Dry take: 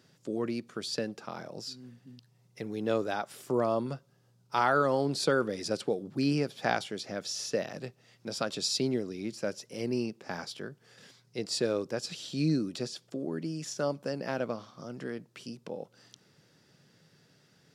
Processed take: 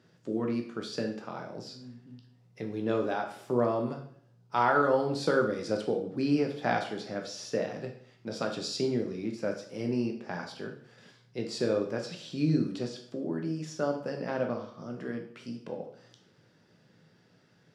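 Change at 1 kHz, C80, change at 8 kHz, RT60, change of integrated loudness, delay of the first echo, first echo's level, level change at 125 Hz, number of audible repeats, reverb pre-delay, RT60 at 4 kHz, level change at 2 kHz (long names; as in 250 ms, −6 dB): +1.5 dB, 11.5 dB, −7.0 dB, 0.60 s, +1.0 dB, no echo audible, no echo audible, +1.0 dB, no echo audible, 5 ms, 0.55 s, +0.5 dB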